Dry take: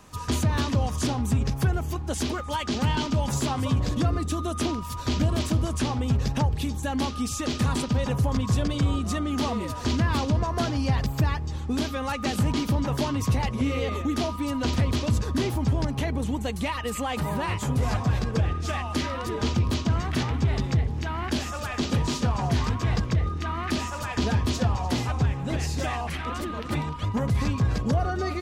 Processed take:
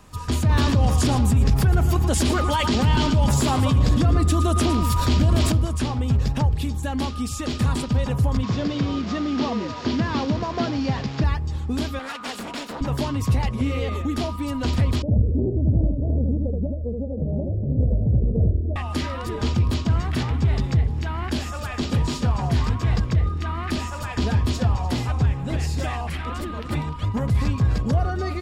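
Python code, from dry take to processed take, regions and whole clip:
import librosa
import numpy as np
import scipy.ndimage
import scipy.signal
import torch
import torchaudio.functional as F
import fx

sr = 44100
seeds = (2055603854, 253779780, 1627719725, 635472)

y = fx.chain(x, sr, fx.echo_single(ms=113, db=-11.5),
    fx.env_flatten(amount_pct=70), at=(0.49, 5.52))
y = fx.chain(y, sr, fx.delta_mod(bps=32000, step_db=-31.5),
    fx.highpass(hz=210.0, slope=12),
    fx.low_shelf(hz=420.0, db=6.5), at=(8.43, 11.24))
y = fx.chain(y, sr, fx.lower_of_two(delay_ms=4.2),
    fx.weighting(curve='A'),
    fx.doppler_dist(depth_ms=0.52), at=(11.99, 12.81))
y = fx.chain(y, sr, fx.steep_lowpass(hz=630.0, slope=96),
    fx.echo_single(ms=77, db=-3.0),
    fx.doppler_dist(depth_ms=0.26), at=(15.02, 18.76))
y = fx.low_shelf(y, sr, hz=100.0, db=7.5)
y = fx.notch(y, sr, hz=6100.0, q=13.0)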